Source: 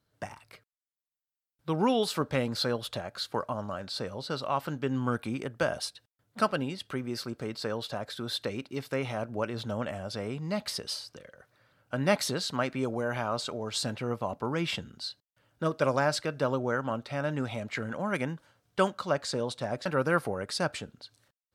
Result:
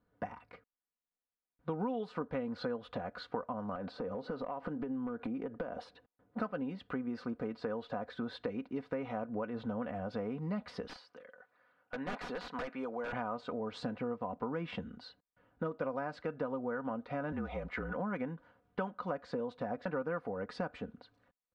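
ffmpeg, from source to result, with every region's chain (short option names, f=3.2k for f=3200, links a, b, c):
-filter_complex "[0:a]asettb=1/sr,asplit=3[a][b][c];[a]atrim=end=3.754[d];[b]atrim=start=3.75:end=6.4,asetpts=PTS-STARTPTS,afade=t=in:d=0.004:c=qsin,afade=t=out:st=2.646:d=0.004:c=qsin,equalizer=f=430:t=o:w=2.6:g=7,acompressor=threshold=-34dB:ratio=16:attack=3.2:release=140:knee=1:detection=peak,asoftclip=type=hard:threshold=-30dB[e];[c]atrim=start=6.396[f];[d][e]acrossfade=d=0.004:c1=hsin:c2=qsin[g];[g][f]acrossfade=d=0.004:c1=qsin:c2=hsin,asettb=1/sr,asplit=3[h][i][j];[h]atrim=end=10.874[k];[i]atrim=start=10.87:end=13.13,asetpts=PTS-STARTPTS,afade=t=in:d=0.004:c=qsin,afade=t=out:st=2.256:d=0.004:c=qsin,highpass=f=1k:p=1,aeval=exprs='(mod(22.4*val(0)+1,2)-1)/22.4':c=same[l];[j]atrim=start=13.126[m];[k][l]acrossfade=d=0.004:c1=hsin:c2=qsin[n];[n][m]acrossfade=d=0.004:c1=qsin:c2=hsin,asettb=1/sr,asplit=3[o][p][q];[o]atrim=end=17.324[r];[p]atrim=start=17.32:end=17.95,asetpts=PTS-STARTPTS,afade=t=in:d=0.004:c=qsin,afade=t=out:st=0.626:d=0.004:c=qsin,lowshelf=f=400:g=-6.5,afreqshift=-46[s];[q]atrim=start=17.946[t];[r][s]acrossfade=d=0.004:c1=hsin:c2=qsin[u];[u][t]acrossfade=d=0.004:c1=qsin:c2=hsin,lowpass=1.5k,aecho=1:1:4.1:0.63,acompressor=threshold=-35dB:ratio=6,volume=1dB"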